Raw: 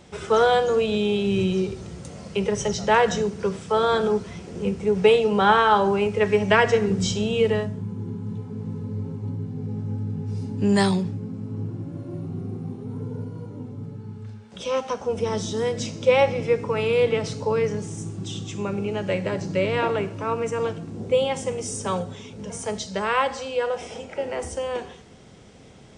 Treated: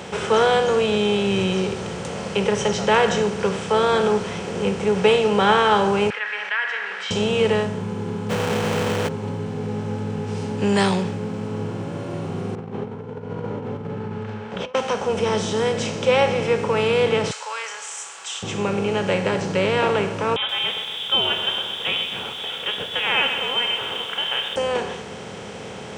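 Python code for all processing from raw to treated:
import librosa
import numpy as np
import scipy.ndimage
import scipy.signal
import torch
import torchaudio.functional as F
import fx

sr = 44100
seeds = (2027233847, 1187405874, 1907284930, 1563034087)

y = fx.chain(x, sr, fx.ladder_highpass(hz=1600.0, resonance_pct=75),
    fx.air_absorb(metres=400.0),
    fx.env_flatten(amount_pct=50), at=(6.1, 7.11))
y = fx.quant_companded(y, sr, bits=2, at=(8.29, 9.07), fade=0.02)
y = fx.dmg_tone(y, sr, hz=490.0, level_db=-32.0, at=(8.29, 9.07), fade=0.02)
y = fx.chain(y, sr, fx.lowpass(hz=2000.0, slope=12),
    fx.over_compress(threshold_db=-36.0, ratio=-0.5), at=(12.55, 14.75))
y = fx.chain(y, sr, fx.cheby2_highpass(hz=250.0, order=4, stop_db=70),
    fx.peak_eq(hz=7500.0, db=12.0, octaves=0.38), at=(17.31, 18.43))
y = fx.chain(y, sr, fx.freq_invert(carrier_hz=3600),
    fx.echo_crushed(ms=129, feedback_pct=55, bits=8, wet_db=-13.0), at=(20.36, 24.56))
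y = fx.bin_compress(y, sr, power=0.6)
y = scipy.signal.sosfilt(scipy.signal.butter(2, 77.0, 'highpass', fs=sr, output='sos'), y)
y = F.gain(torch.from_numpy(y), -2.0).numpy()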